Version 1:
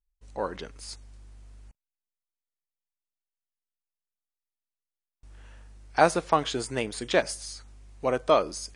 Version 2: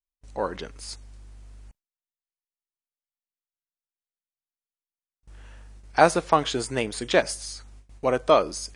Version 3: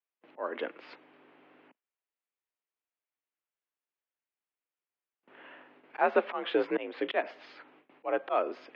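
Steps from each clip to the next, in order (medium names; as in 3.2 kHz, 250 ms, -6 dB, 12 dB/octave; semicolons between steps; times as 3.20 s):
gate with hold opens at -43 dBFS; trim +3 dB
slow attack 329 ms; mistuned SSB +54 Hz 220–2900 Hz; trim +4.5 dB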